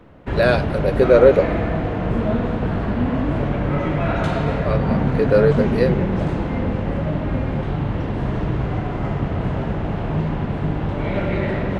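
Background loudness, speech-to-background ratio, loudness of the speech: −22.0 LKFS, 3.5 dB, −18.5 LKFS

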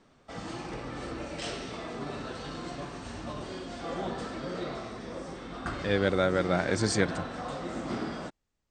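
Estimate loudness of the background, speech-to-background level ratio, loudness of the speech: −37.5 LKFS, 9.5 dB, −28.0 LKFS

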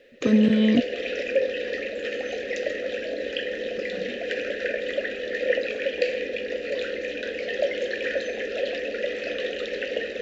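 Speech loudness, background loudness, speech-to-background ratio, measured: −20.5 LKFS, −28.5 LKFS, 8.0 dB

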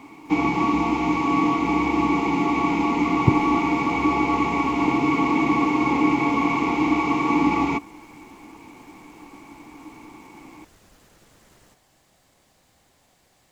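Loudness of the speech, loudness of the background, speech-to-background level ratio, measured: −26.0 LKFS, −21.0 LKFS, −5.0 dB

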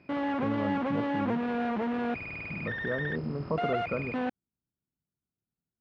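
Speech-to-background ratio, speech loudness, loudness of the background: −3.5 dB, −36.0 LKFS, −32.5 LKFS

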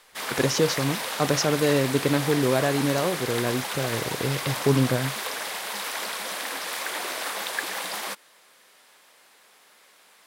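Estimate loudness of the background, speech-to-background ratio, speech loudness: −30.0 LKFS, 5.0 dB, −25.0 LKFS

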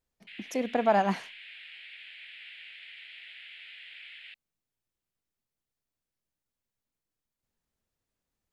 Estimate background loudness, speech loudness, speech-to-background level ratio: −45.5 LKFS, −28.5 LKFS, 17.0 dB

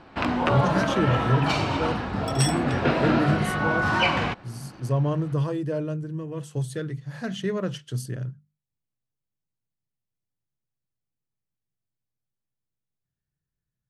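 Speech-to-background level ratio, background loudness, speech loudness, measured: −4.0 dB, −24.5 LKFS, −28.5 LKFS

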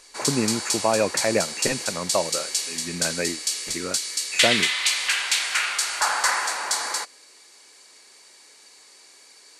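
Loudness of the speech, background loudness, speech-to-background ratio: −27.0 LKFS, −23.5 LKFS, −3.5 dB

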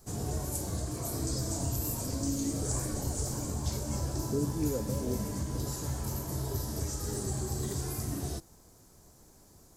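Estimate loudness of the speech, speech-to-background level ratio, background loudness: −37.5 LKFS, −3.0 dB, −34.5 LKFS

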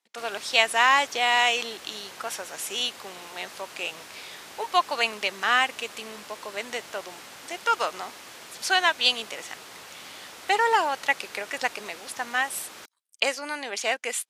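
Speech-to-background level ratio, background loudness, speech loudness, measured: 17.0 dB, −42.5 LKFS, −25.5 LKFS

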